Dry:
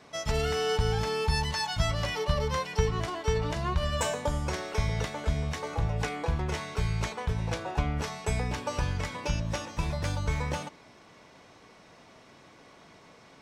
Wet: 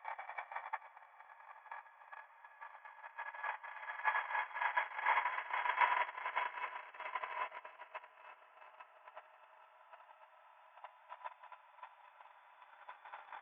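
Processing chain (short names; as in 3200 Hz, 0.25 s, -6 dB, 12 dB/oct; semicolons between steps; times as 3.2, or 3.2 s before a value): sine-wave speech; negative-ratio compressor -38 dBFS, ratio -1; Paulstretch 8.7×, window 1.00 s, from 8.48; gate -30 dBFS, range -41 dB; band shelf 1200 Hz +11 dB; gain +5.5 dB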